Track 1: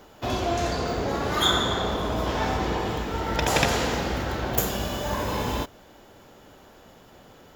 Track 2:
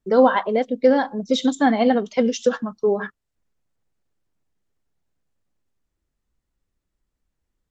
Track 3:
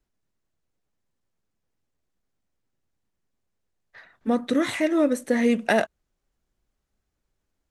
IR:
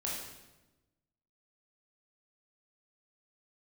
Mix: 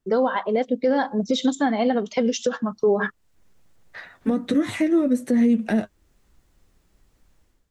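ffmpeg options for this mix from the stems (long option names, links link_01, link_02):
-filter_complex "[1:a]volume=0dB[link_01];[2:a]acrossover=split=310[link_02][link_03];[link_03]acompressor=threshold=-36dB:ratio=6[link_04];[link_02][link_04]amix=inputs=2:normalize=0,flanger=delay=7.9:depth=4.1:regen=33:speed=0.38:shape=triangular,volume=-2.5dB[link_05];[link_01][link_05]amix=inputs=2:normalize=0,dynaudnorm=framelen=100:gausssize=7:maxgain=15.5dB,alimiter=limit=-12dB:level=0:latency=1:release=331,volume=0dB"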